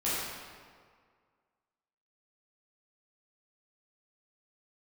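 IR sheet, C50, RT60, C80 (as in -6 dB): -3.0 dB, 1.9 s, -1.0 dB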